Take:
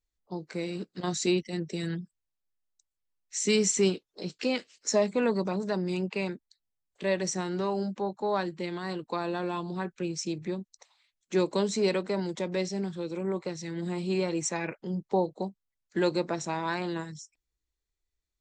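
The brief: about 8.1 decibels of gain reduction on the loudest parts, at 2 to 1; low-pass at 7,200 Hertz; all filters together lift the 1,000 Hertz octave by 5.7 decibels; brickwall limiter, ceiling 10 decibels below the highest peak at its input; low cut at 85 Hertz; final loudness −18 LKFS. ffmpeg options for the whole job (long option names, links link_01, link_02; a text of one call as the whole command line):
ffmpeg -i in.wav -af "highpass=85,lowpass=7200,equalizer=frequency=1000:width_type=o:gain=7,acompressor=threshold=-34dB:ratio=2,volume=20.5dB,alimiter=limit=-8dB:level=0:latency=1" out.wav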